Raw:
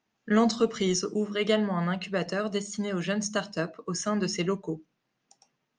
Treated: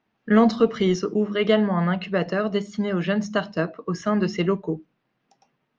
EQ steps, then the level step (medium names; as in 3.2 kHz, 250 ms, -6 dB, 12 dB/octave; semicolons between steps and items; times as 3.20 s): distance through air 230 m; +6.5 dB